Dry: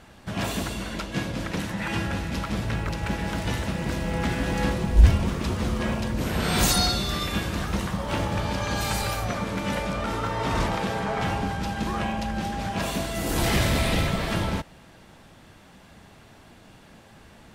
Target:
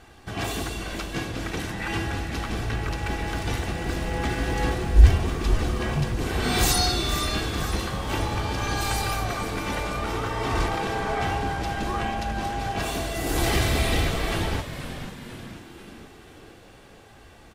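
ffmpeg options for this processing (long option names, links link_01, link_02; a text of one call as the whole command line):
ffmpeg -i in.wav -filter_complex "[0:a]aecho=1:1:2.6:0.52,asplit=2[link_01][link_02];[link_02]asplit=6[link_03][link_04][link_05][link_06][link_07][link_08];[link_03]adelay=488,afreqshift=-100,volume=-10.5dB[link_09];[link_04]adelay=976,afreqshift=-200,volume=-15.7dB[link_10];[link_05]adelay=1464,afreqshift=-300,volume=-20.9dB[link_11];[link_06]adelay=1952,afreqshift=-400,volume=-26.1dB[link_12];[link_07]adelay=2440,afreqshift=-500,volume=-31.3dB[link_13];[link_08]adelay=2928,afreqshift=-600,volume=-36.5dB[link_14];[link_09][link_10][link_11][link_12][link_13][link_14]amix=inputs=6:normalize=0[link_15];[link_01][link_15]amix=inputs=2:normalize=0,volume=-1dB" out.wav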